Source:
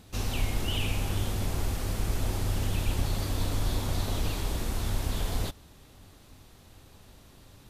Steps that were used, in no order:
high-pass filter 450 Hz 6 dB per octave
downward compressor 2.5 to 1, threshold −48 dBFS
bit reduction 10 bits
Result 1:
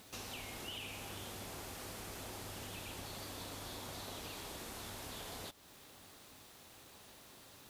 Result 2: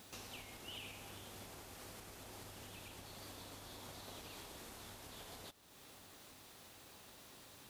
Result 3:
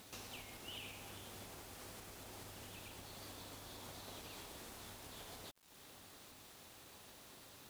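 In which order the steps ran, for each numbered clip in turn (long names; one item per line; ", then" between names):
high-pass filter, then bit reduction, then downward compressor
bit reduction, then downward compressor, then high-pass filter
downward compressor, then high-pass filter, then bit reduction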